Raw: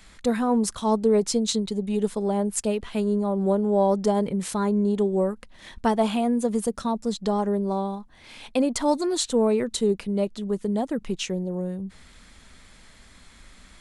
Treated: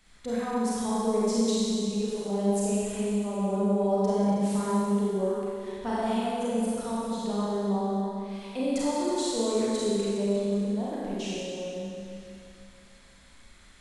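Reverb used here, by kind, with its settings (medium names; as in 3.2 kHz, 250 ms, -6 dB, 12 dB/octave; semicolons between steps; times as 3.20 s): Schroeder reverb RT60 2.6 s, combs from 31 ms, DRR -8 dB; trim -12.5 dB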